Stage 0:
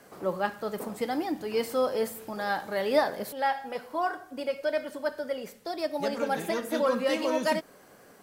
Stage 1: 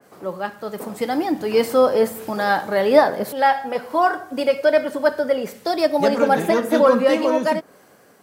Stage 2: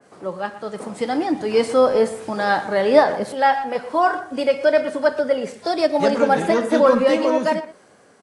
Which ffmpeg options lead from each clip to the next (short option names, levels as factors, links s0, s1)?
-af "highpass=70,dynaudnorm=f=250:g=9:m=3.76,adynamicequalizer=threshold=0.0178:dfrequency=1900:dqfactor=0.7:tfrequency=1900:tqfactor=0.7:attack=5:release=100:ratio=0.375:range=4:mode=cutabove:tftype=highshelf,volume=1.19"
-filter_complex "[0:a]asplit=2[s0][s1];[s1]adelay=120,highpass=300,lowpass=3400,asoftclip=type=hard:threshold=0.316,volume=0.2[s2];[s0][s2]amix=inputs=2:normalize=0" -ar 22050 -c:a aac -b:a 48k